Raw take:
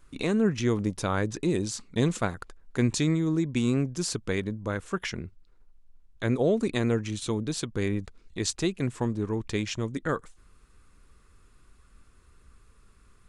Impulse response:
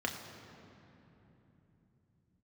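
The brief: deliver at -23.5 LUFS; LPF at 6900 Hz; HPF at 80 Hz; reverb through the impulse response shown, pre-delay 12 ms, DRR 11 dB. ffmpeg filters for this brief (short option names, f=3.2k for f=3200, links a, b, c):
-filter_complex "[0:a]highpass=80,lowpass=6.9k,asplit=2[a][b];[1:a]atrim=start_sample=2205,adelay=12[c];[b][c]afir=irnorm=-1:irlink=0,volume=-16dB[d];[a][d]amix=inputs=2:normalize=0,volume=5dB"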